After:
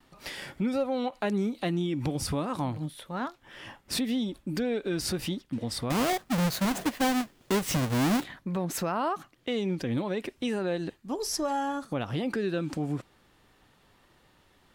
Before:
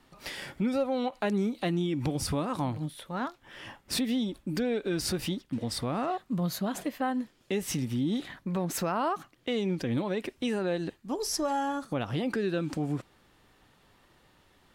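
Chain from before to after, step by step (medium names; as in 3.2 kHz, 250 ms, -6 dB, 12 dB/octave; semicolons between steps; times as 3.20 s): 5.90–8.24 s: square wave that keeps the level; gate with hold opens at -58 dBFS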